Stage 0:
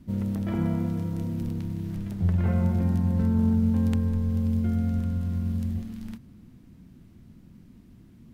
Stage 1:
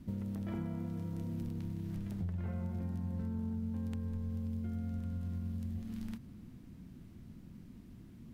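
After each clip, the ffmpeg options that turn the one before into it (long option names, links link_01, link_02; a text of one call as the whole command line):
ffmpeg -i in.wav -af "acompressor=threshold=-35dB:ratio=5,volume=-1.5dB" out.wav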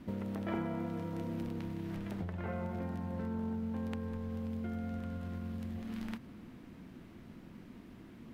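ffmpeg -i in.wav -af "bass=frequency=250:gain=-15,treble=frequency=4000:gain=-11,volume=10.5dB" out.wav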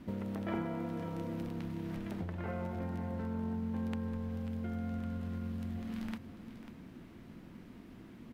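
ffmpeg -i in.wav -af "aecho=1:1:544:0.251" out.wav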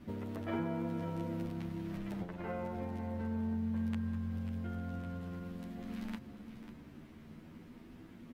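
ffmpeg -i in.wav -filter_complex "[0:a]asplit=2[link_01][link_02];[link_02]adelay=10.4,afreqshift=0.28[link_03];[link_01][link_03]amix=inputs=2:normalize=1,volume=2dB" out.wav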